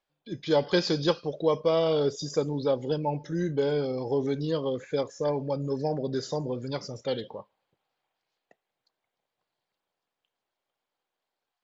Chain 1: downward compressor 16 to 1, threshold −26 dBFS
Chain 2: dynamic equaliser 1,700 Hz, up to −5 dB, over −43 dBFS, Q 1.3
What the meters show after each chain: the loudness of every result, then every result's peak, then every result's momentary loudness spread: −32.5, −29.0 LKFS; −15.5, −12.5 dBFS; 4, 9 LU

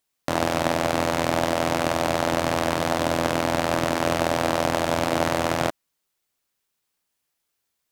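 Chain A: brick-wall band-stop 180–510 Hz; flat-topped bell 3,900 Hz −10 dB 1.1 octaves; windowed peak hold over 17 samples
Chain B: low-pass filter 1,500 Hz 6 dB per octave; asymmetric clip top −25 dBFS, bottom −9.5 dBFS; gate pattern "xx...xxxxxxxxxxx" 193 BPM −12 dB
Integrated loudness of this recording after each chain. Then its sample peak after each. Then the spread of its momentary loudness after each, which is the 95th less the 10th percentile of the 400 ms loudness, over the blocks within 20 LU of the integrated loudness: −24.0, −29.5 LKFS; −6.5, −11.0 dBFS; 1, 4 LU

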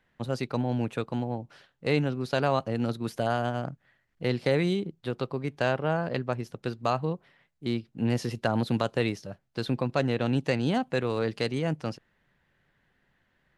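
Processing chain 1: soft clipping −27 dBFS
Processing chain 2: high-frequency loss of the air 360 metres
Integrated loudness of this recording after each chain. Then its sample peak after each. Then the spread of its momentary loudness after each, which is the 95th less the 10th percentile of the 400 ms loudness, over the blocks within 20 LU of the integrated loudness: −34.5, −30.5 LKFS; −27.0, −11.5 dBFS; 7, 9 LU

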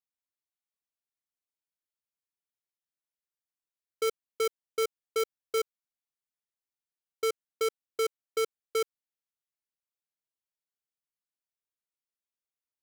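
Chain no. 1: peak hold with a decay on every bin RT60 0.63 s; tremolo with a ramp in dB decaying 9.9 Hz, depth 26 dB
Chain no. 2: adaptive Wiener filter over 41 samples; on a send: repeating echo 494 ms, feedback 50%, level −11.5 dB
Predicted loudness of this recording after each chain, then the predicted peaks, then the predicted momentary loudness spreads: −39.5, −33.5 LKFS; −23.0, −25.0 dBFS; 2, 17 LU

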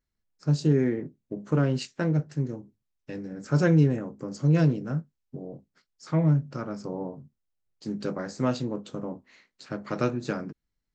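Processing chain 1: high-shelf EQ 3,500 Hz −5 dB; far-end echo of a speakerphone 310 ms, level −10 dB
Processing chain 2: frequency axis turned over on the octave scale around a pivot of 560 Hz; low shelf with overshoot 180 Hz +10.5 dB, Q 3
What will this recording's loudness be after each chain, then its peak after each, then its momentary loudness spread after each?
−27.5, −28.0 LKFS; −11.0, −9.0 dBFS; 19, 19 LU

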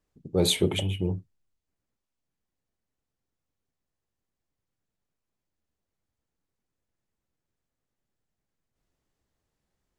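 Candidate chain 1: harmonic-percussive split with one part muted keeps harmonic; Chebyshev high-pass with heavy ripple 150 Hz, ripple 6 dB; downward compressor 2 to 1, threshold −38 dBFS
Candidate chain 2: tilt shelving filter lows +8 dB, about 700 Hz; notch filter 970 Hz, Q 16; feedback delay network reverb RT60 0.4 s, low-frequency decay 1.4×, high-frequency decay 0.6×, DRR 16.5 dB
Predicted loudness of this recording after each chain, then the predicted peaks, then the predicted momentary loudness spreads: −43.0, −23.0 LKFS; −27.0, −5.5 dBFS; 4, 6 LU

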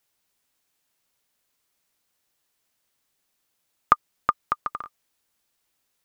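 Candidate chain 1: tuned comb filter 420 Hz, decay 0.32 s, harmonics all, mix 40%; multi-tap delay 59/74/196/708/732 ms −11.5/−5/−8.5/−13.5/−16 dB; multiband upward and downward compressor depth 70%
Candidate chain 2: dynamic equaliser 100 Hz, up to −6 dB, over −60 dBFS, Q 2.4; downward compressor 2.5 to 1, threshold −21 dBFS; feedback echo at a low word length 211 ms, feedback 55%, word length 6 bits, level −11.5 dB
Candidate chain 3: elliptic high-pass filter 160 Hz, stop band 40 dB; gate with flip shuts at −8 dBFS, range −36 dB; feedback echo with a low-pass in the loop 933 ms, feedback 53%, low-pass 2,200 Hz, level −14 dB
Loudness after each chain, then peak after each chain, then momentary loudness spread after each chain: −32.5, −31.0, −33.5 LKFS; −6.0, −2.5, −4.5 dBFS; 12, 11, 19 LU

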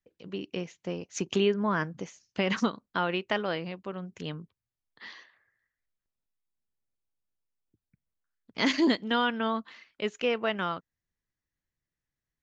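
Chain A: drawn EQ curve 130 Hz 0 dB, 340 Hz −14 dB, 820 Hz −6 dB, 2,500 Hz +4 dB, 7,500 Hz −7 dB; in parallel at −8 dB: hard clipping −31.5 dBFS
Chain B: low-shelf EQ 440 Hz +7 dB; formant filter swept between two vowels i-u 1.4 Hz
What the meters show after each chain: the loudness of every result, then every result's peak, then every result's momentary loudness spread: −31.5, −36.0 LKFS; −13.5, −14.5 dBFS; 15, 20 LU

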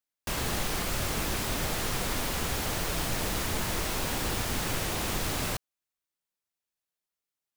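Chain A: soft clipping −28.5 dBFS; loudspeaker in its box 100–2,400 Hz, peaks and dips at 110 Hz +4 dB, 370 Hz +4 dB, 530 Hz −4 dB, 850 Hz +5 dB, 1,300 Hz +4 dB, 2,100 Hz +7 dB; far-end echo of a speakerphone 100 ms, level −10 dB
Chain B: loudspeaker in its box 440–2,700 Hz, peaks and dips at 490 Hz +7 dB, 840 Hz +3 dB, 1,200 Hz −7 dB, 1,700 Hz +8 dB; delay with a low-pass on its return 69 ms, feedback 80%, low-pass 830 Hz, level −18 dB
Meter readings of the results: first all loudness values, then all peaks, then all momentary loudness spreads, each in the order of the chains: −35.0, −33.5 LKFS; −22.0, −20.0 dBFS; 1, 1 LU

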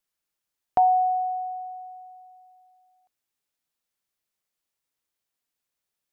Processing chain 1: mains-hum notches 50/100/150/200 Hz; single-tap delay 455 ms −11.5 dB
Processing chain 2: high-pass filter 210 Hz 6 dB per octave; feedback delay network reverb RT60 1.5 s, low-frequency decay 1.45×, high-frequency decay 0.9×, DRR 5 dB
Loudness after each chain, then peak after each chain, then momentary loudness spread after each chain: −24.5, −22.0 LKFS; −11.5, −9.0 dBFS; 19, 20 LU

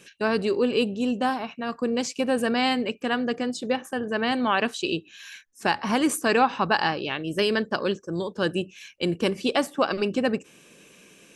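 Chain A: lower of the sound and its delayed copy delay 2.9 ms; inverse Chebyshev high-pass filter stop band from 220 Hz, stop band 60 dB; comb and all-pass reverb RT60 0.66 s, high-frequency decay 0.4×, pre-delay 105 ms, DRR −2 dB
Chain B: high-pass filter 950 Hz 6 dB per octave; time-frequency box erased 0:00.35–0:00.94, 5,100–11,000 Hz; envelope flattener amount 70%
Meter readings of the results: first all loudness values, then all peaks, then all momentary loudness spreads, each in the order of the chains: −27.0, −23.5 LKFS; −9.0, −5.0 dBFS; 8, 4 LU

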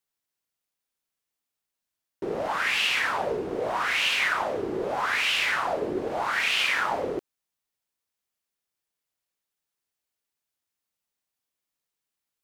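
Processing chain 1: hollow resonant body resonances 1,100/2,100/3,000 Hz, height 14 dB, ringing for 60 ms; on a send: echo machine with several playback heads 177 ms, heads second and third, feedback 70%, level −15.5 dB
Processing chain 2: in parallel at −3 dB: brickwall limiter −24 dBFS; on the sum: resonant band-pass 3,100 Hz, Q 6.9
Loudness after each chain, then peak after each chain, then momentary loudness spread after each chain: −22.0, −30.0 LKFS; −8.0, −16.5 dBFS; 19, 20 LU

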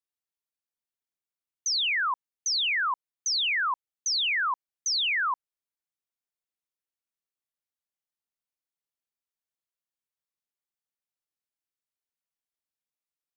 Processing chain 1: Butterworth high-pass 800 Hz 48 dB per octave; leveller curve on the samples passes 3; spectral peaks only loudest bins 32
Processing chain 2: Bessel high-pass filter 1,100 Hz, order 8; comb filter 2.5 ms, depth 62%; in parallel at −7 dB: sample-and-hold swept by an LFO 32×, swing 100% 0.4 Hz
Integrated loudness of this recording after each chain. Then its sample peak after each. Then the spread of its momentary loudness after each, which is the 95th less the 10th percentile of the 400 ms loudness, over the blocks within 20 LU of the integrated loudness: −24.5, −25.0 LKFS; −21.5, −16.0 dBFS; 8, 8 LU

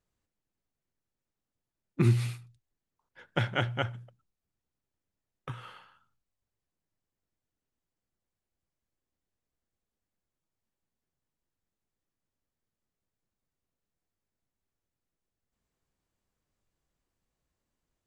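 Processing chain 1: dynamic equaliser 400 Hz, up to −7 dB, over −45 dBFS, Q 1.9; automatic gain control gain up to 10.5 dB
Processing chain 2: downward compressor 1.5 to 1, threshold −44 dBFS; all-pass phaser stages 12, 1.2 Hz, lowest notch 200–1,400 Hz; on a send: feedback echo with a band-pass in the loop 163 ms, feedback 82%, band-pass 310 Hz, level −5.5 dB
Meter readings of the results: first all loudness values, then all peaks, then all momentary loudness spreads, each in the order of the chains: −22.0, −40.5 LKFS; −3.5, −22.0 dBFS; 21, 20 LU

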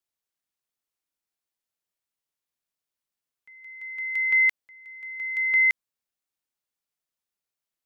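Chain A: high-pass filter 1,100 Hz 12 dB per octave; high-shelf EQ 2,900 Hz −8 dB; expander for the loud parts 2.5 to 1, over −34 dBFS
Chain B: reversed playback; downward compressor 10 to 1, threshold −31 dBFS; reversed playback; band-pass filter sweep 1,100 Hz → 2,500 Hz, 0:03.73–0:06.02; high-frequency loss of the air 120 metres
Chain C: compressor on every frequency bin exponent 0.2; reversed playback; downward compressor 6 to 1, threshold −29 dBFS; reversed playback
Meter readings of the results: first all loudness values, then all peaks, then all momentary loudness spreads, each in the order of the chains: −24.0, −37.0, −31.5 LKFS; −18.5, −19.5, −14.5 dBFS; 16, 17, 8 LU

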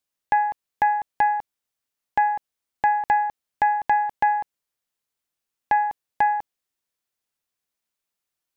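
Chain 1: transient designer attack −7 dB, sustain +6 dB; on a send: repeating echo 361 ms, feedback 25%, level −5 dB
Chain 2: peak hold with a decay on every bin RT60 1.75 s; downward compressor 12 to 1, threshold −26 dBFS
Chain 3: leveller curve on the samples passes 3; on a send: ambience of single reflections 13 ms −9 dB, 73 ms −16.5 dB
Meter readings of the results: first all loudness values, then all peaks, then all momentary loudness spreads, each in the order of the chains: −23.5, −30.5, −16.0 LKFS; −8.5, −11.0, −9.0 dBFS; 13, 9, 7 LU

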